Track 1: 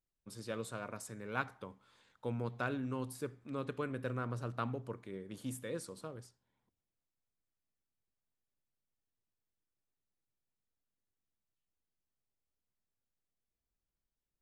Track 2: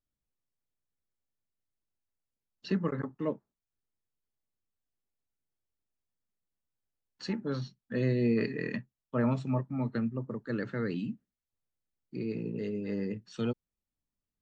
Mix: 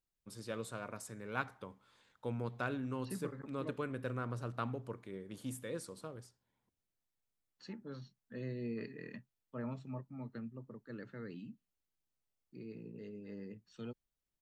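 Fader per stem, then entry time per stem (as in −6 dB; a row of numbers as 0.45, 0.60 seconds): −1.0, −13.5 decibels; 0.00, 0.40 seconds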